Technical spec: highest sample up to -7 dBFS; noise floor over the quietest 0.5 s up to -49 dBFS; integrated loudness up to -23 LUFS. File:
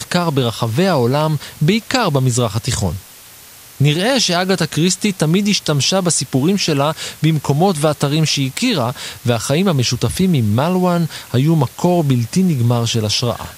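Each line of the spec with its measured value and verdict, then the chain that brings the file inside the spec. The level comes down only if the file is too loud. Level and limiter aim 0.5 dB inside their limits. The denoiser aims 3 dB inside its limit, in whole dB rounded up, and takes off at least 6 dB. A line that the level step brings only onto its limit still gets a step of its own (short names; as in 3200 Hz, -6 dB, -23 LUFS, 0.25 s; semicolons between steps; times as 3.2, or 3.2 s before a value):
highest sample -2.0 dBFS: fail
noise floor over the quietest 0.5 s -40 dBFS: fail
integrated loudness -16.0 LUFS: fail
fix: denoiser 6 dB, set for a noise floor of -40 dBFS; gain -7.5 dB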